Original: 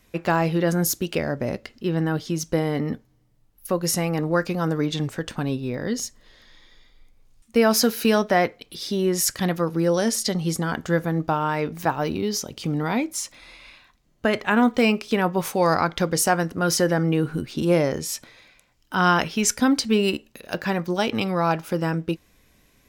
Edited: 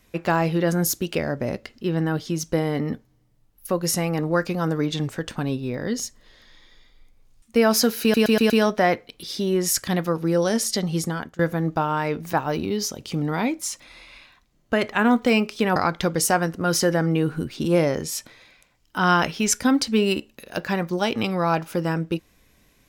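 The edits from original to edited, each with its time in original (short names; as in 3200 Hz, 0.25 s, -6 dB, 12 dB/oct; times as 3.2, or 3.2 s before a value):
8.02 stutter 0.12 s, 5 plays
10.58–10.91 fade out, to -24 dB
15.28–15.73 cut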